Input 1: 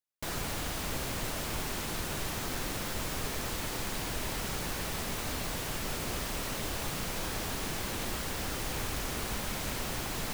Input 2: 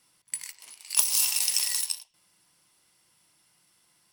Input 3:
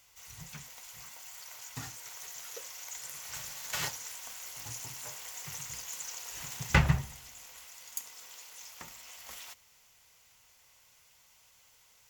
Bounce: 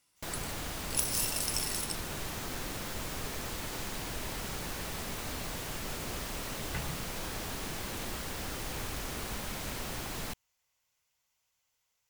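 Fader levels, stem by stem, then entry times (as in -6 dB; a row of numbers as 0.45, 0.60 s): -3.0, -8.5, -16.5 dB; 0.00, 0.00, 0.00 s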